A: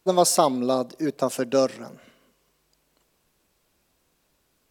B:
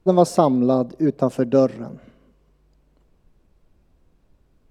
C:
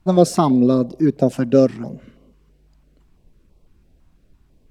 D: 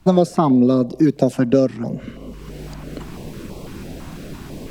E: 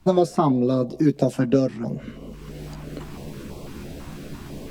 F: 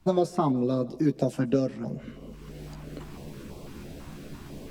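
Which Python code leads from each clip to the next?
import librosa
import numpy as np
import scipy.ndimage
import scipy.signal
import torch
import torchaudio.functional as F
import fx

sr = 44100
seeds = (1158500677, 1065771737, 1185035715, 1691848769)

y1 = fx.tilt_eq(x, sr, slope=-4.0)
y2 = fx.filter_held_notch(y1, sr, hz=6.0, low_hz=440.0, high_hz=1600.0)
y2 = F.gain(torch.from_numpy(y2), 4.5).numpy()
y3 = fx.band_squash(y2, sr, depth_pct=100)
y4 = fx.doubler(y3, sr, ms=14.0, db=-6.5)
y4 = F.gain(torch.from_numpy(y4), -4.0).numpy()
y5 = fx.echo_feedback(y4, sr, ms=159, feedback_pct=58, wet_db=-23.5)
y5 = F.gain(torch.from_numpy(y5), -5.5).numpy()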